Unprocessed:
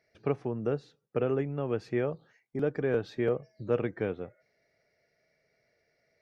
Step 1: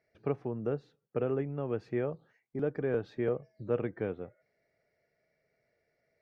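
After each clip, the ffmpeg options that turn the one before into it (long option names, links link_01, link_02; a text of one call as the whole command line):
ffmpeg -i in.wav -af "highshelf=frequency=3500:gain=-11.5,volume=-2.5dB" out.wav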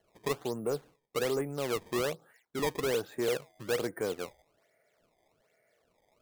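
ffmpeg -i in.wav -filter_complex "[0:a]asplit=2[link_01][link_02];[link_02]highpass=frequency=720:poles=1,volume=18dB,asoftclip=type=tanh:threshold=-17.5dB[link_03];[link_01][link_03]amix=inputs=2:normalize=0,lowpass=frequency=2200:poles=1,volume=-6dB,acrusher=samples=18:mix=1:aa=0.000001:lfo=1:lforange=28.8:lforate=1.2,volume=-3dB" out.wav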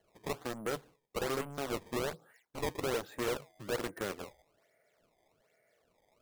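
ffmpeg -i in.wav -af "aeval=exprs='0.0891*(cos(1*acos(clip(val(0)/0.0891,-1,1)))-cos(1*PI/2))+0.0355*(cos(7*acos(clip(val(0)/0.0891,-1,1)))-cos(7*PI/2))':channel_layout=same,volume=-6dB" out.wav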